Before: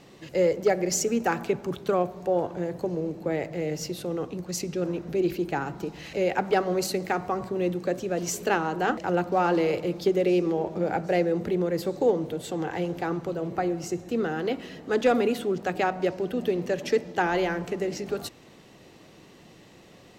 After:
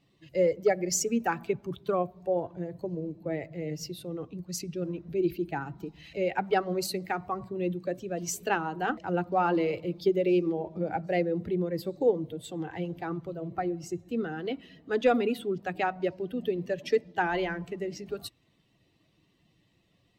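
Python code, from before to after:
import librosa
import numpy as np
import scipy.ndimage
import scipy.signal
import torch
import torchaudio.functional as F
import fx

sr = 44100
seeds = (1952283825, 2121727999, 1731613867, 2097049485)

y = fx.bin_expand(x, sr, power=1.5)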